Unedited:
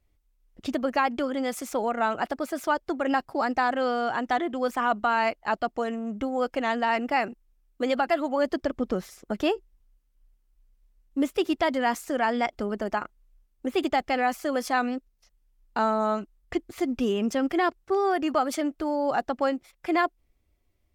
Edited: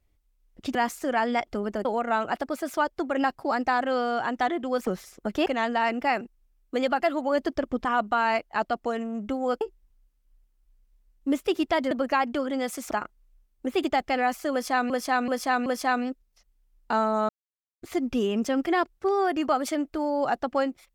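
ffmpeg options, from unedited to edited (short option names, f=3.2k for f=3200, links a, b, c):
-filter_complex "[0:a]asplit=14[a][b][c][d][e][f][g][h][i][j][k][l][m][n];[a]atrim=end=0.752[o];[b]atrim=start=11.808:end=12.912[p];[c]atrim=start=1.748:end=4.772[q];[d]atrim=start=8.918:end=9.512[r];[e]atrim=start=6.528:end=8.922[s];[f]atrim=start=4.768:end=6.532[t];[g]atrim=start=9.508:end=11.812[u];[h]atrim=start=0.748:end=1.752[v];[i]atrim=start=12.908:end=14.902[w];[j]atrim=start=14.518:end=14.902[x];[k]atrim=start=14.518:end=14.902[y];[l]atrim=start=14.518:end=16.15,asetpts=PTS-STARTPTS,afade=t=out:st=1.628:d=0.004:c=hsin[z];[m]atrim=start=16.15:end=16.68,asetpts=PTS-STARTPTS,volume=0[aa];[n]atrim=start=16.68,asetpts=PTS-STARTPTS,afade=t=in:d=0.004:c=hsin[ab];[o][p]acrossfade=d=0.004:c1=hsin:c2=hsin[ac];[ac][q]acrossfade=d=0.004:c1=hsin:c2=hsin[ad];[ad][r]acrossfade=d=0.004:c1=hsin:c2=hsin[ae];[ae][s]acrossfade=d=0.004:c1=hsin:c2=hsin[af];[af][t]acrossfade=d=0.004:c1=hsin:c2=hsin[ag];[ag][u]acrossfade=d=0.004:c1=hsin:c2=hsin[ah];[ah][v]acrossfade=d=0.004:c1=hsin:c2=hsin[ai];[ai][w]acrossfade=d=0.004:c1=hsin:c2=hsin[aj];[aj][x]acrossfade=d=0.004:c1=hsin:c2=hsin[ak];[ak][y]acrossfade=d=0.004:c1=hsin:c2=hsin[al];[z][aa][ab]concat=n=3:v=0:a=1[am];[al][am]acrossfade=d=0.004:c1=hsin:c2=hsin"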